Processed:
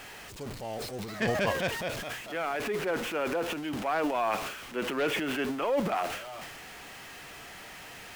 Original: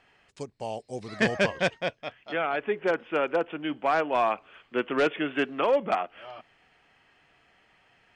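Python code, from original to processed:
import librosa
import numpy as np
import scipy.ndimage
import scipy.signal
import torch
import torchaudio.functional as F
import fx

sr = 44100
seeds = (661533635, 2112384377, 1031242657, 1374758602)

y = x + 0.5 * 10.0 ** (-35.0 / 20.0) * np.sign(x)
y = fx.transient(y, sr, attack_db=-2, sustain_db=10)
y = y * librosa.db_to_amplitude(-5.5)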